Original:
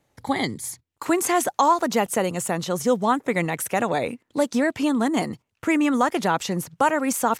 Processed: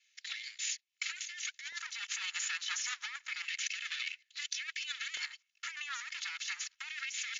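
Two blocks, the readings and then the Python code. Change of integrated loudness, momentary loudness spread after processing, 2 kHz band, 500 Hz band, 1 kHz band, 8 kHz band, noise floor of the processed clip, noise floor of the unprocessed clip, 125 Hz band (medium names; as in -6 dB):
-15.0 dB, 6 LU, -8.5 dB, under -40 dB, -29.0 dB, -8.5 dB, -80 dBFS, -76 dBFS, under -40 dB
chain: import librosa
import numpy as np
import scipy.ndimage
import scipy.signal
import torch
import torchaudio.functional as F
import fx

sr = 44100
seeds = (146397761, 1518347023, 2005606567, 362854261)

y = fx.lower_of_two(x, sr, delay_ms=2.3)
y = scipy.signal.sosfilt(scipy.signal.cheby2(4, 60, [120.0, 650.0], 'bandstop', fs=sr, output='sos'), y)
y = fx.filter_lfo_highpass(y, sr, shape='square', hz=0.29, low_hz=580.0, high_hz=2200.0, q=1.2)
y = fx.brickwall_lowpass(y, sr, high_hz=7300.0)
y = fx.over_compress(y, sr, threshold_db=-40.0, ratio=-1.0)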